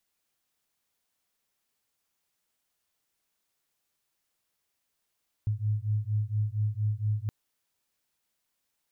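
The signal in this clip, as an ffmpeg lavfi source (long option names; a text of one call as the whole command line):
ffmpeg -f lavfi -i "aevalsrc='0.0355*(sin(2*PI*104*t)+sin(2*PI*108.3*t))':duration=1.82:sample_rate=44100" out.wav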